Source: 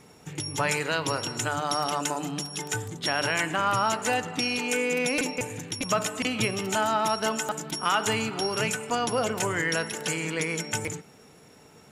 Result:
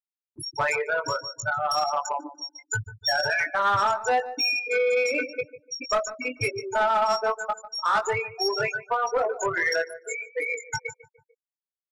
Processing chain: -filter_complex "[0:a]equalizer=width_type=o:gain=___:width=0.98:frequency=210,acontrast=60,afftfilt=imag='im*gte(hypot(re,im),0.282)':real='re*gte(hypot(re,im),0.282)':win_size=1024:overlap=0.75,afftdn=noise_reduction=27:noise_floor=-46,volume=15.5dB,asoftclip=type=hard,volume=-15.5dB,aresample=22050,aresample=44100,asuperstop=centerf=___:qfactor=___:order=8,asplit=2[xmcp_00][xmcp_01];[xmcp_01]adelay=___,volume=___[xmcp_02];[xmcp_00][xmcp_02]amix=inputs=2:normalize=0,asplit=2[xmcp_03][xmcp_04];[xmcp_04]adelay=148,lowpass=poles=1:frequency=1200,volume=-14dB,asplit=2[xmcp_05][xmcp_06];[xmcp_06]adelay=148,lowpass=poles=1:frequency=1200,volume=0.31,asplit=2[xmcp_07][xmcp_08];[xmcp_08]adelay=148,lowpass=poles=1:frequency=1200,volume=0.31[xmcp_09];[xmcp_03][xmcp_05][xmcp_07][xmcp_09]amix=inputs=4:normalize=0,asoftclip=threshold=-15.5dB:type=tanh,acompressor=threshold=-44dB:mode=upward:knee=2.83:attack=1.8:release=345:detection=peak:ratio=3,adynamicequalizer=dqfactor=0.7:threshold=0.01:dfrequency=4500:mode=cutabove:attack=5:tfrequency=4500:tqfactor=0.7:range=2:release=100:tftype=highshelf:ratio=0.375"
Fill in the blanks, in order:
-13, 3100, 3.2, 20, -5.5dB